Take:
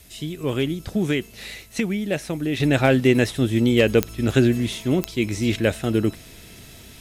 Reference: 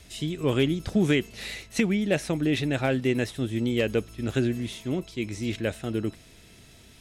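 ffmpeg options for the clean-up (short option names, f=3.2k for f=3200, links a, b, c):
-af "adeclick=t=4,agate=range=-21dB:threshold=-36dB,asetnsamples=n=441:p=0,asendcmd='2.6 volume volume -8dB',volume=0dB"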